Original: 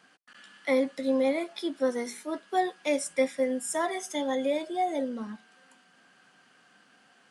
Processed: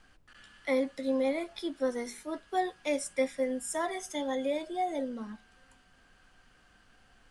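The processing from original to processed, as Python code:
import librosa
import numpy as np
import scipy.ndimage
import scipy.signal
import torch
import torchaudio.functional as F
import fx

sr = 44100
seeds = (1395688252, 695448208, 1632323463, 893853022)

y = fx.dmg_noise_colour(x, sr, seeds[0], colour='brown', level_db=-61.0)
y = F.gain(torch.from_numpy(y), -3.5).numpy()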